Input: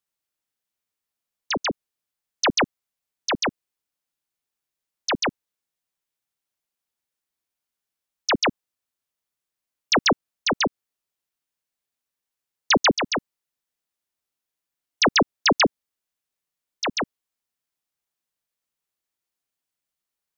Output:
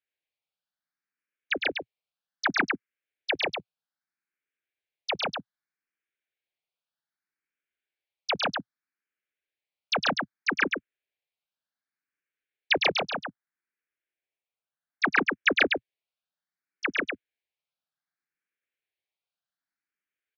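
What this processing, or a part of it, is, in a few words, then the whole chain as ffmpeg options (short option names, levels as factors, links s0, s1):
barber-pole phaser into a guitar amplifier: -filter_complex "[0:a]asettb=1/sr,asplit=3[s0][s1][s2];[s0]atrim=end=13.044[s3];[s1]atrim=start=13.04:end=15.32,asetpts=PTS-STARTPTS,afade=t=in:d=0.004:c=qsin,afade=t=out:st=2.276:d=0.004:c=qsin,bass=f=250:g=-2,treble=f=4000:g=-13[s4];[s2]atrim=start=15.316[s5];[s3][s4]acrossfade=d=0.004:c1=hsin:c2=qsin[s6];[s6][s5]acrossfade=d=0.004:c1=qsin:c2=hsin,aecho=1:1:107:0.562,asplit=2[s7][s8];[s8]afreqshift=0.64[s9];[s7][s9]amix=inputs=2:normalize=1,asoftclip=type=tanh:threshold=0.224,highpass=96,equalizer=f=120:t=q:w=4:g=-8,equalizer=f=230:t=q:w=4:g=-5,equalizer=f=1000:t=q:w=4:g=-6,equalizer=f=1600:t=q:w=4:g=8,equalizer=f=2300:t=q:w=4:g=7,lowpass=f=4400:w=0.5412,lowpass=f=4400:w=1.3066,volume=0.708"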